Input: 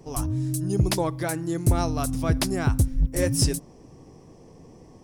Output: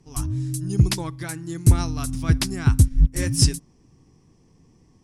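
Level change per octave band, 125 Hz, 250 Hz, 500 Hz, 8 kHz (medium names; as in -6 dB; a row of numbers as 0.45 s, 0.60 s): +4.5 dB, 0.0 dB, -7.0 dB, +2.5 dB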